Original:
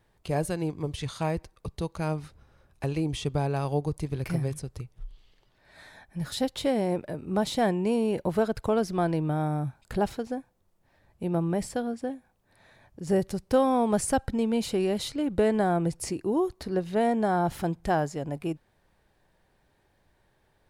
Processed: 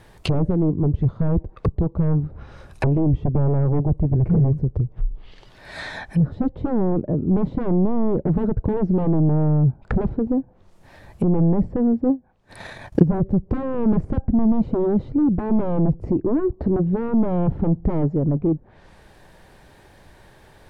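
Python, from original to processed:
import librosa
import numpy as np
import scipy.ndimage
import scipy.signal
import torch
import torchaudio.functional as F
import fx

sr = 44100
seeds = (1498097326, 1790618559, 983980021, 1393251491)

y = fx.fold_sine(x, sr, drive_db=15, ceiling_db=-11.0)
y = fx.env_lowpass_down(y, sr, base_hz=360.0, full_db=-17.0)
y = fx.transient(y, sr, attack_db=11, sustain_db=-10, at=(12.05, 13.02), fade=0.02)
y = F.gain(torch.from_numpy(y), -1.0).numpy()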